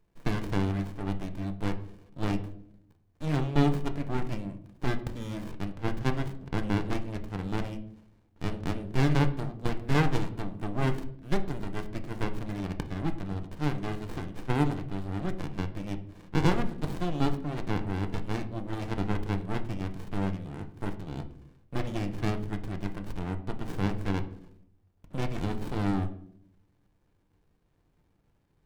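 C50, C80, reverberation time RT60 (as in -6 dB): 13.5 dB, 16.5 dB, 0.70 s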